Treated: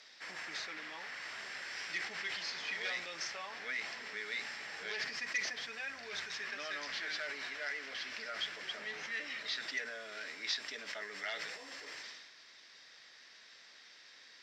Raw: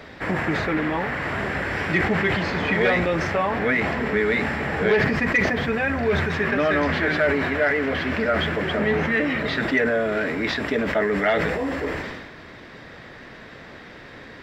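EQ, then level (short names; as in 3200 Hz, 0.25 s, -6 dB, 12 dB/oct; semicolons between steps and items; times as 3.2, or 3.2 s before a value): band-pass 5500 Hz, Q 2.7; +1.5 dB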